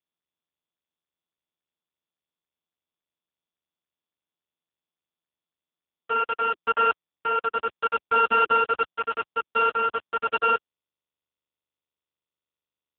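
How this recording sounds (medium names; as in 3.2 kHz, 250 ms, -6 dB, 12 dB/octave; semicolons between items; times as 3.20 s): a buzz of ramps at a fixed pitch in blocks of 32 samples; random-step tremolo; a quantiser's noise floor 6-bit, dither none; AMR-NB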